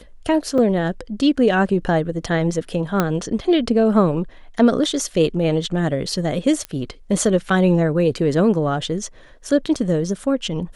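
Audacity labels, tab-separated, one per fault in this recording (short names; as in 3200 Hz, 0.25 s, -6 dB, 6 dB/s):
0.580000	0.580000	gap 2.9 ms
3.000000	3.000000	pop -4 dBFS
6.650000	6.650000	pop -13 dBFS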